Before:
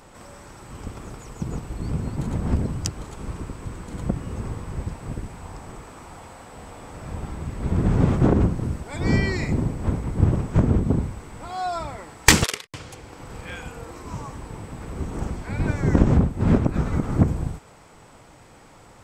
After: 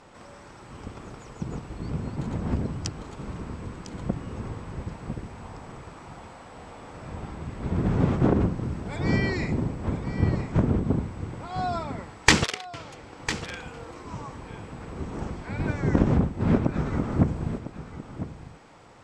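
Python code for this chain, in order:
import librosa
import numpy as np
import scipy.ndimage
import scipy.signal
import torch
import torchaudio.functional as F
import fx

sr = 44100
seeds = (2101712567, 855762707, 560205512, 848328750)

p1 = scipy.signal.sosfilt(scipy.signal.butter(2, 5800.0, 'lowpass', fs=sr, output='sos'), x)
p2 = fx.low_shelf(p1, sr, hz=70.0, db=-8.5)
p3 = p2 + fx.echo_single(p2, sr, ms=1002, db=-12.0, dry=0)
y = p3 * 10.0 ** (-2.0 / 20.0)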